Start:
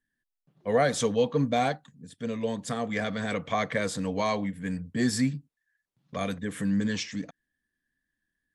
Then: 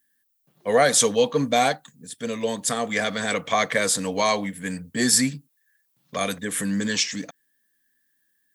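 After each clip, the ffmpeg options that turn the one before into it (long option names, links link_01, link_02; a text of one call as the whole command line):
ffmpeg -i in.wav -af "aemphasis=mode=production:type=bsi,volume=6.5dB" out.wav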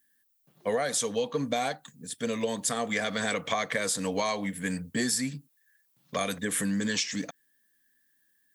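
ffmpeg -i in.wav -af "acompressor=threshold=-25dB:ratio=10" out.wav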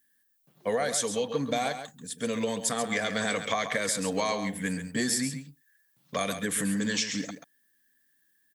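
ffmpeg -i in.wav -af "aecho=1:1:135:0.335" out.wav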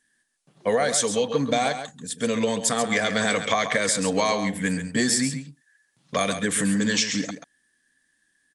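ffmpeg -i in.wav -af "aresample=22050,aresample=44100,volume=6dB" out.wav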